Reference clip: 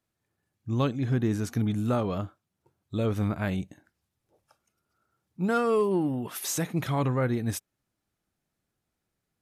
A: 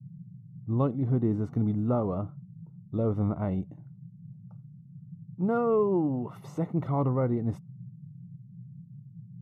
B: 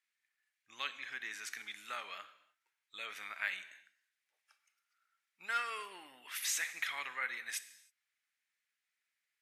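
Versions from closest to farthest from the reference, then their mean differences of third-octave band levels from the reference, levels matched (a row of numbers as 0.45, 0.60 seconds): A, B; 8.0, 14.5 decibels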